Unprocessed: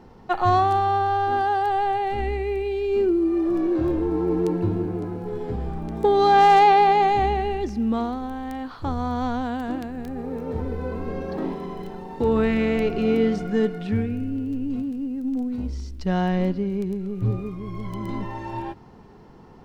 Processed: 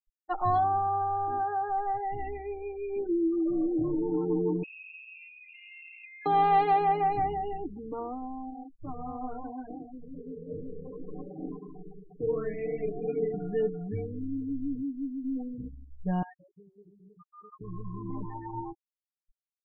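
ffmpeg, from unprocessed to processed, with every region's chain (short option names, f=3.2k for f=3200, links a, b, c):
-filter_complex "[0:a]asettb=1/sr,asplit=3[a][b][c];[a]atrim=end=4.634[d];[b]atrim=start=4.63:end=6.26,asetpts=PTS-STARTPTS,afade=t=in:d=0.004:c=qsin,afade=t=out:st=1.626:d=0.004:c=qsin,aemphasis=mode=production:type=bsi,lowpass=f=2.5k:t=q:w=0.5098,lowpass=f=2.5k:t=q:w=0.6013,lowpass=f=2.5k:t=q:w=0.9,lowpass=f=2.5k:t=q:w=2.563,afreqshift=-2900,acompressor=threshold=-31dB:ratio=12:attack=3.2:release=140:knee=1:detection=peak[e];[c]atrim=start=6.256[f];[d][e]acrossfade=d=0.004:c1=hsin:c2=qsin[g];[g][f]acrossfade=d=0.004:c1=qsin:c2=hsin,asettb=1/sr,asplit=3[h][i][j];[h]atrim=end=8.504[k];[i]atrim=start=8.5:end=13.34,asetpts=PTS-STARTPTS,afade=t=in:d=0.004:c=qsin,afade=t=out:st=4.836:d=0.004:c=qsin,flanger=delay=19:depth=6.6:speed=2.8,asuperstop=centerf=880:order=4:qfactor=6.3[l];[j]atrim=start=13.336[m];[k][l]acrossfade=d=0.004:c1=hsin:c2=qsin[n];[n][m]acrossfade=d=0.004:c1=qsin:c2=hsin,asettb=1/sr,asplit=3[o][p][q];[o]atrim=end=16.224[r];[p]atrim=start=16.22:end=17.61,asetpts=PTS-STARTPTS,afade=t=in:d=0.004:c=qsin,afade=t=out:st=1.386:d=0.004:c=qsin,acompressor=threshold=-28dB:ratio=12:attack=3.2:release=140:knee=1:detection=peak,highpass=410,equalizer=f=420:t=q:w=4:g=-5,equalizer=f=610:t=q:w=4:g=-7,equalizer=f=880:t=q:w=4:g=3,equalizer=f=1.2k:t=q:w=4:g=9,equalizer=f=1.8k:t=q:w=4:g=6,equalizer=f=2.8k:t=q:w=4:g=10,lowpass=f=3.3k:w=0.5412,lowpass=f=3.3k:w=1.3066[s];[q]atrim=start=17.606[t];[r][s]acrossfade=d=0.004:c1=hsin:c2=qsin[u];[u][t]acrossfade=d=0.004:c1=qsin:c2=hsin,afftfilt=real='re*gte(hypot(re,im),0.0562)':imag='im*gte(hypot(re,im),0.0562)':win_size=1024:overlap=0.75,lowpass=f=1.5k:p=1,aecho=1:1:6.6:0.84,volume=-8.5dB"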